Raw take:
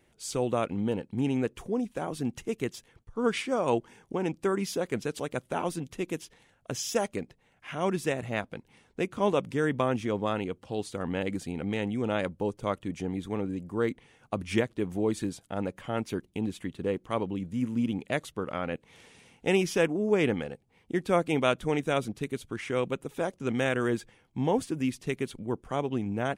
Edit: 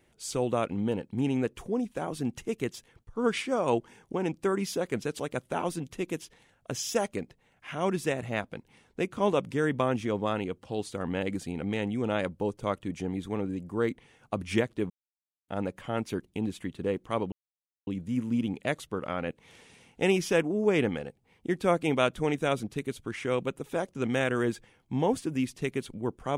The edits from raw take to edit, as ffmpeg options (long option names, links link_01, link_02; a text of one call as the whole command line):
ffmpeg -i in.wav -filter_complex "[0:a]asplit=4[link_01][link_02][link_03][link_04];[link_01]atrim=end=14.9,asetpts=PTS-STARTPTS,afade=type=out:start_time=14.896:duration=0.004:curve=hsin[link_05];[link_02]atrim=start=14.9:end=15.48,asetpts=PTS-STARTPTS,volume=0[link_06];[link_03]atrim=start=15.48:end=17.32,asetpts=PTS-STARTPTS,afade=type=in:duration=0.004:curve=hsin,afade=type=out:start_time=1.836:duration=0.004:curve=hsin,apad=pad_dur=0.55[link_07];[link_04]atrim=start=17.32,asetpts=PTS-STARTPTS,afade=type=in:duration=0.004:curve=hsin[link_08];[link_05][link_06][link_07][link_08]concat=n=4:v=0:a=1" out.wav